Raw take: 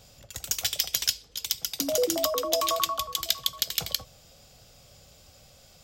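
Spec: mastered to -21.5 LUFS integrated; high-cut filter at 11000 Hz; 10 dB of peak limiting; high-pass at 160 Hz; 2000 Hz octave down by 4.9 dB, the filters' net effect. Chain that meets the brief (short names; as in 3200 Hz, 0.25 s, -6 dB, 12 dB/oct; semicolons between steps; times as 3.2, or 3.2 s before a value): HPF 160 Hz; LPF 11000 Hz; bell 2000 Hz -6.5 dB; gain +9.5 dB; limiter -6 dBFS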